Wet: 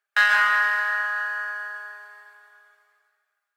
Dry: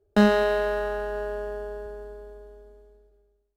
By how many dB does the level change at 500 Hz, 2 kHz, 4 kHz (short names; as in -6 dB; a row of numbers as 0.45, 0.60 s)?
-20.5, +13.5, +5.0 dB